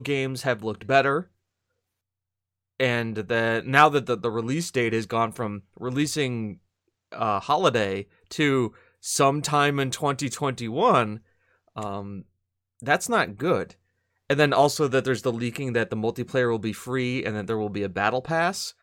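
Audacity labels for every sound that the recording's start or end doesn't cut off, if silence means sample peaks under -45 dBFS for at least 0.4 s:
2.800000	6.570000	sound
7.120000	11.180000	sound
11.760000	12.220000	sound
12.800000	13.720000	sound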